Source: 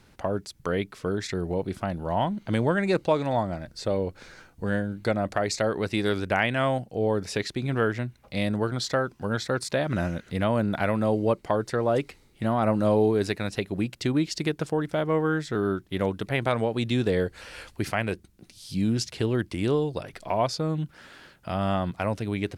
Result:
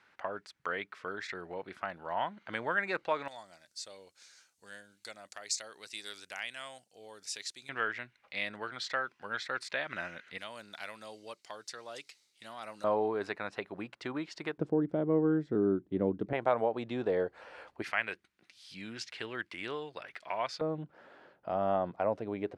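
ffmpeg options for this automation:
-af "asetnsamples=n=441:p=0,asendcmd='3.28 bandpass f 7100;7.69 bandpass f 2100;10.38 bandpass f 5600;12.84 bandpass f 1100;14.58 bandpass f 300;16.33 bandpass f 760;17.82 bandpass f 1900;20.61 bandpass f 610',bandpass=f=1600:t=q:w=1.3:csg=0"

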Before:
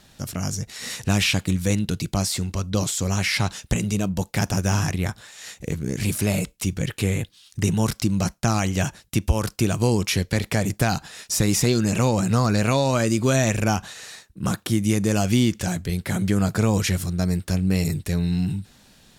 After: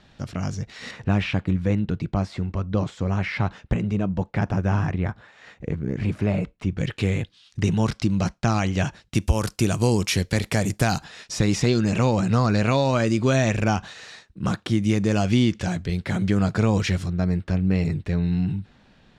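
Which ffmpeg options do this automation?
-af "asetnsamples=n=441:p=0,asendcmd='0.91 lowpass f 1800;6.78 lowpass f 4300;9.15 lowpass f 11000;11.04 lowpass f 4500;17.08 lowpass f 2600',lowpass=3400"

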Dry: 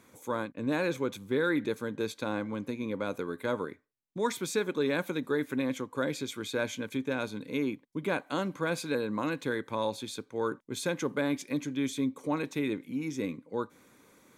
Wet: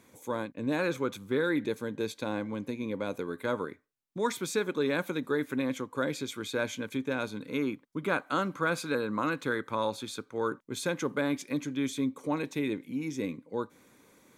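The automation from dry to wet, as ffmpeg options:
-af "asetnsamples=n=441:p=0,asendcmd='0.79 equalizer g 6;1.41 equalizer g -4.5;3.31 equalizer g 2.5;7.41 equalizer g 10;10.38 equalizer g 3.5;12.33 equalizer g -3',equalizer=f=1300:t=o:w=0.38:g=-5.5"

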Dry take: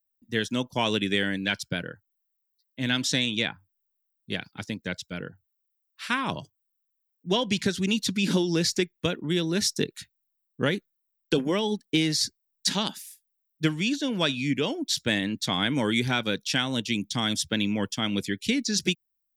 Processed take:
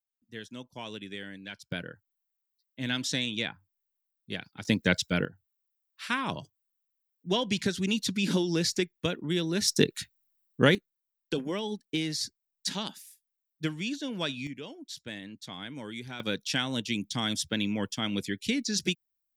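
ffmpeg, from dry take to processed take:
-af "asetnsamples=n=441:p=0,asendcmd='1.72 volume volume -5dB;4.65 volume volume 7.5dB;5.25 volume volume -3dB;9.68 volume volume 4dB;10.75 volume volume -7dB;14.47 volume volume -15dB;16.2 volume volume -3.5dB',volume=0.178"

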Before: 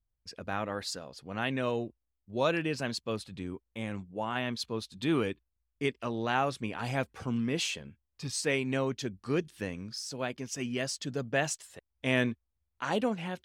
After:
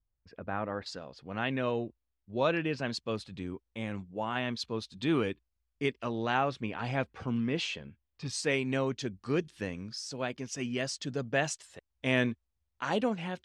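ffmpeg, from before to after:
-af "asetnsamples=n=441:p=0,asendcmd='0.86 lowpass f 4000;2.92 lowpass f 6700;6.38 lowpass f 4100;8.26 lowpass f 7600',lowpass=1800"

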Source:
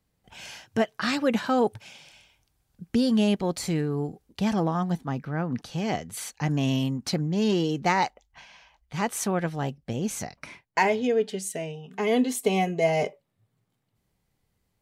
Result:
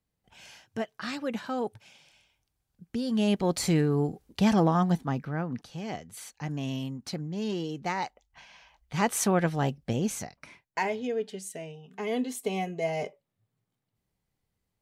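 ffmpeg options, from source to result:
-af "volume=4.22,afade=t=in:st=3.04:d=0.58:silence=0.281838,afade=t=out:st=4.83:d=0.86:silence=0.298538,afade=t=in:st=8.02:d=1.12:silence=0.316228,afade=t=out:st=9.92:d=0.41:silence=0.354813"

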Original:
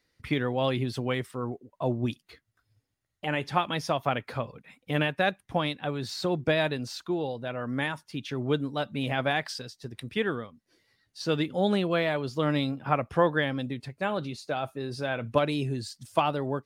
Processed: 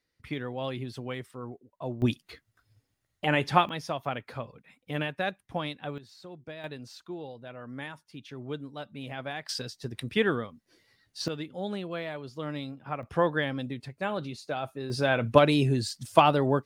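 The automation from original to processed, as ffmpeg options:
-af "asetnsamples=n=441:p=0,asendcmd='2.02 volume volume 4dB;3.69 volume volume -5dB;5.98 volume volume -17.5dB;6.64 volume volume -9.5dB;9.49 volume volume 3dB;11.28 volume volume -9dB;13.03 volume volume -2dB;14.9 volume volume 5.5dB',volume=0.447"

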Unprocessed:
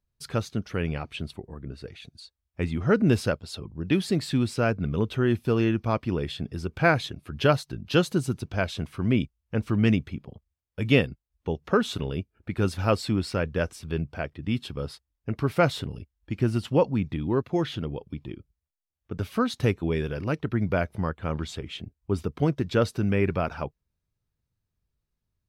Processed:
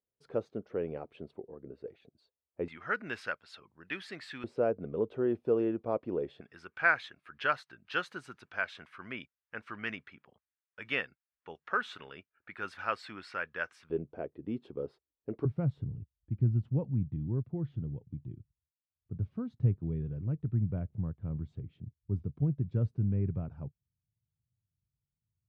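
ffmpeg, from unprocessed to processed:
-af "asetnsamples=n=441:p=0,asendcmd='2.68 bandpass f 1700;4.44 bandpass f 490;6.41 bandpass f 1600;13.9 bandpass f 410;15.45 bandpass f 120',bandpass=f=470:t=q:w=2.1:csg=0"

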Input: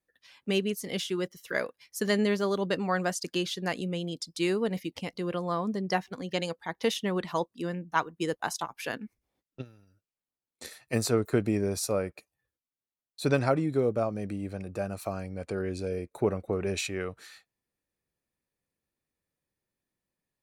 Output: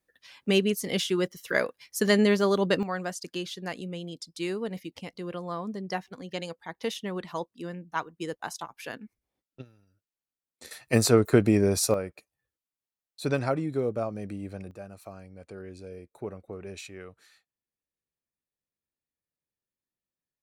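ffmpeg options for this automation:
-af "asetnsamples=n=441:p=0,asendcmd='2.83 volume volume -4dB;10.71 volume volume 6dB;11.94 volume volume -2dB;14.71 volume volume -10dB',volume=1.68"

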